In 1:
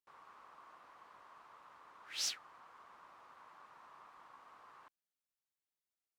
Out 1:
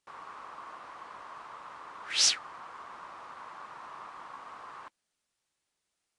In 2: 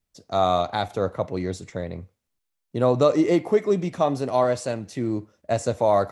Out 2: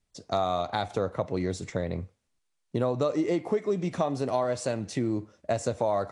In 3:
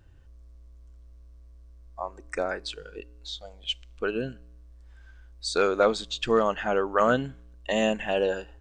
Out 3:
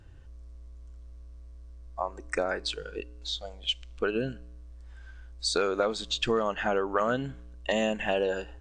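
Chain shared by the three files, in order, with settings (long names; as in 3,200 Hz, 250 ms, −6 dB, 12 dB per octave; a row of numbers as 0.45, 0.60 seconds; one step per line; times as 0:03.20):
downward compressor 4 to 1, threshold −28 dBFS
AAC 96 kbit/s 22,050 Hz
normalise the peak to −12 dBFS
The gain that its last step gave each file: +13.5, +3.0, +3.5 decibels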